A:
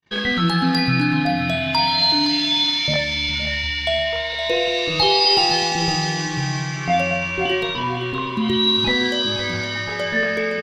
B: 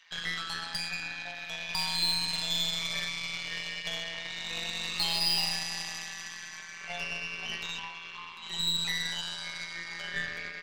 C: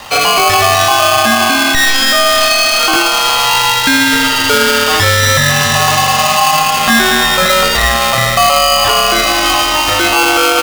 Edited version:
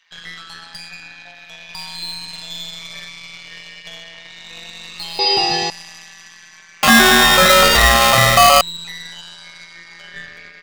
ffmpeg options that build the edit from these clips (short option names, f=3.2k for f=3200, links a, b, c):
-filter_complex "[1:a]asplit=3[a][b][c];[a]atrim=end=5.192[d];[0:a]atrim=start=5.188:end=5.702[e];[b]atrim=start=5.698:end=6.832[f];[2:a]atrim=start=6.828:end=8.612[g];[c]atrim=start=8.608[h];[d][e]acrossfade=d=0.004:c1=hsin:c2=hsin[i];[i][f]acrossfade=d=0.004:c1=hsin:c2=hsin[j];[j][g]acrossfade=d=0.004:c1=hsin:c2=hsin[k];[k][h]acrossfade=d=0.004:c1=hsin:c2=hsin"